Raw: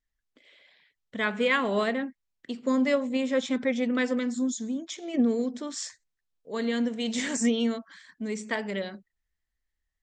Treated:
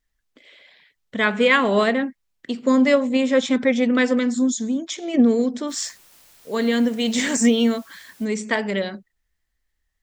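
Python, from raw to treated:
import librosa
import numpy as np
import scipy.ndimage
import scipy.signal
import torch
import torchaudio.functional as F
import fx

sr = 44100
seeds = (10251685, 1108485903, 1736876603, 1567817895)

y = fx.quant_dither(x, sr, seeds[0], bits=10, dither='triangular', at=(5.68, 8.24), fade=0.02)
y = y * librosa.db_to_amplitude(8.0)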